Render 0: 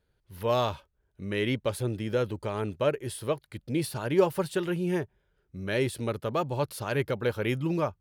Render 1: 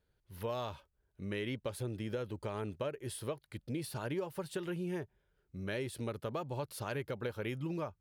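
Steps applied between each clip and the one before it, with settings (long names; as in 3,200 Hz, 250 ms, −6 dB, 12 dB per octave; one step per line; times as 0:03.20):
downward compressor 6 to 1, threshold −30 dBFS, peak gain reduction 13.5 dB
level −4.5 dB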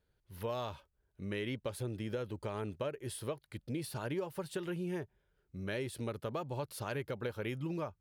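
no processing that can be heard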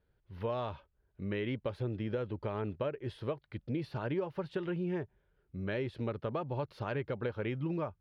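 high-frequency loss of the air 280 metres
level +3.5 dB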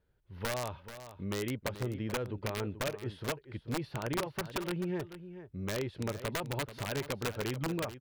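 wrap-around overflow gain 27 dB
single-tap delay 435 ms −12.5 dB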